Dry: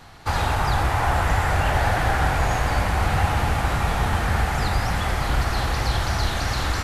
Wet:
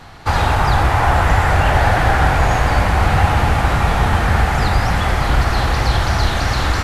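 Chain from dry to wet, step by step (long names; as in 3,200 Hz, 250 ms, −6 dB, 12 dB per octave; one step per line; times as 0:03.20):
high-shelf EQ 5,800 Hz −6.5 dB
level +7 dB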